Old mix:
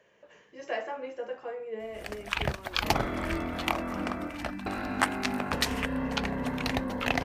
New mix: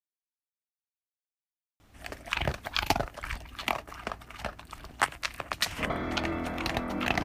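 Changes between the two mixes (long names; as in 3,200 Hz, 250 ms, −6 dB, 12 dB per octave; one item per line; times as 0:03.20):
speech: muted
second sound: entry +2.95 s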